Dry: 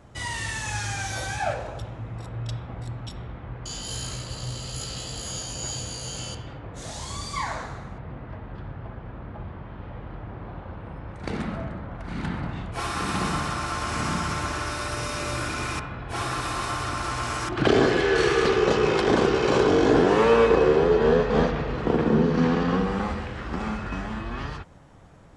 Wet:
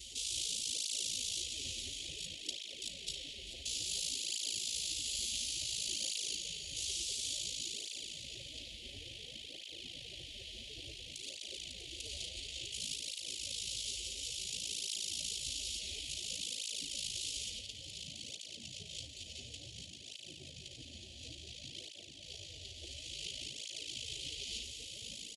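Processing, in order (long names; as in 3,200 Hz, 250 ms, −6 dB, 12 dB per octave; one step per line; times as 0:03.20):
compressor on every frequency bin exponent 0.4
low-shelf EQ 92 Hz −8.5 dB
single-tap delay 648 ms −10 dB
ring modulation 27 Hz
compressor whose output falls as the input rises −25 dBFS, ratio −1
high-pass filter 66 Hz 12 dB per octave
gate on every frequency bin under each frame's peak −15 dB weak
Chebyshev band-stop filter 480–3,100 Hz, order 3
feedback echo with a low-pass in the loop 216 ms, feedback 80%, low-pass 3,300 Hz, level −10.5 dB
through-zero flanger with one copy inverted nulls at 0.57 Hz, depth 7.3 ms
level −2 dB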